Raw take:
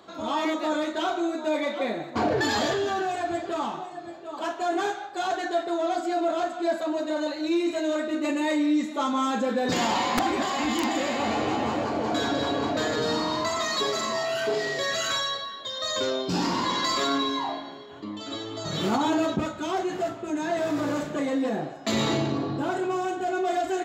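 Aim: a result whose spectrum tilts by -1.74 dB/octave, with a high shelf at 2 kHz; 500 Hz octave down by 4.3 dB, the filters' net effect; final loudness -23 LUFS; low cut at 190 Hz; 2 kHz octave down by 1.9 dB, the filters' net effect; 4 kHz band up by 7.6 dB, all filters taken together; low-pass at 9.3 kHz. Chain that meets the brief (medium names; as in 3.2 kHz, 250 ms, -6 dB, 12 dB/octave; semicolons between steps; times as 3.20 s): high-pass 190 Hz; low-pass 9.3 kHz; peaking EQ 500 Hz -6.5 dB; treble shelf 2 kHz +8 dB; peaking EQ 2 kHz -7.5 dB; peaking EQ 4 kHz +3.5 dB; trim +3 dB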